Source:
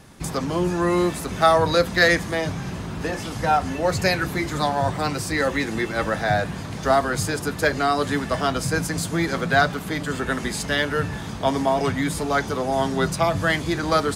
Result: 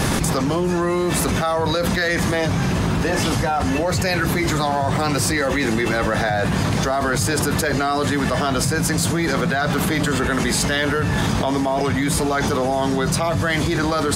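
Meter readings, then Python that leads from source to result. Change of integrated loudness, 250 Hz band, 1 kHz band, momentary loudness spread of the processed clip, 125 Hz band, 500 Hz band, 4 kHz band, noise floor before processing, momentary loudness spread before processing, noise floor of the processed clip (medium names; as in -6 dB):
+2.5 dB, +5.0 dB, +0.5 dB, 1 LU, +6.0 dB, +1.0 dB, +3.5 dB, -32 dBFS, 8 LU, -21 dBFS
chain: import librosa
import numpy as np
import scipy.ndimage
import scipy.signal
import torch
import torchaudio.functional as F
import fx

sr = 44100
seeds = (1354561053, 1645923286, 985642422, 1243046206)

y = fx.env_flatten(x, sr, amount_pct=100)
y = F.gain(torch.from_numpy(y), -7.0).numpy()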